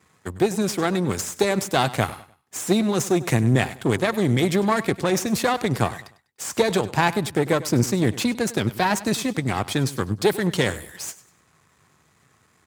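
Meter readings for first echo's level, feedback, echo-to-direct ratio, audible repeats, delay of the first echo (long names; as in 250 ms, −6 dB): −17.0 dB, 33%, −16.5 dB, 2, 99 ms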